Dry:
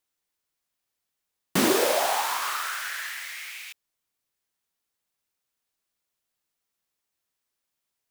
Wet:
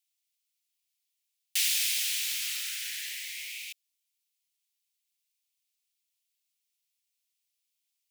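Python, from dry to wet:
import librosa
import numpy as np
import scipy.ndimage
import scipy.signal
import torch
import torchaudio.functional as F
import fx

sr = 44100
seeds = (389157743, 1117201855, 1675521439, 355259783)

y = scipy.signal.sosfilt(scipy.signal.butter(6, 2300.0, 'highpass', fs=sr, output='sos'), x)
y = F.gain(torch.from_numpy(y), 1.0).numpy()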